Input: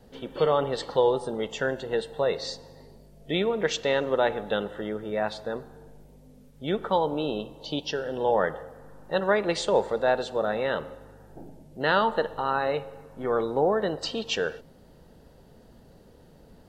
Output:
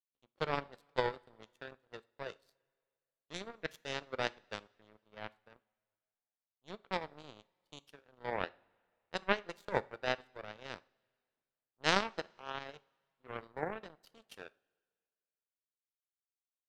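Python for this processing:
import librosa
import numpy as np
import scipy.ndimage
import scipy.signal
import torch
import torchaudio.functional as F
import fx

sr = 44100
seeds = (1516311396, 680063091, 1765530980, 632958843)

y = fx.power_curve(x, sr, exponent=3.0)
y = fx.rev_double_slope(y, sr, seeds[0], early_s=0.4, late_s=2.1, knee_db=-19, drr_db=17.5)
y = y * 10.0 ** (1.0 / 20.0)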